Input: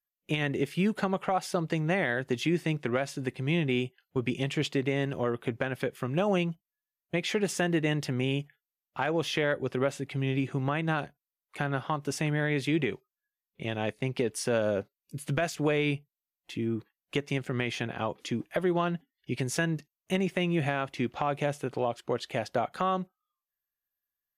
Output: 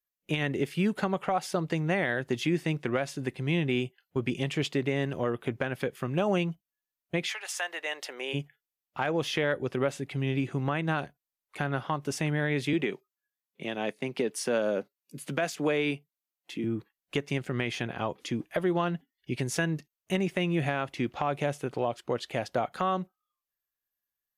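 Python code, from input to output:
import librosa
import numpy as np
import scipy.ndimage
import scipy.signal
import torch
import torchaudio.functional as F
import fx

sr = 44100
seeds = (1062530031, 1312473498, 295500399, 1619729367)

y = fx.highpass(x, sr, hz=fx.line((7.26, 970.0), (8.33, 400.0)), slope=24, at=(7.26, 8.33), fade=0.02)
y = fx.highpass(y, sr, hz=170.0, slope=24, at=(12.73, 16.64))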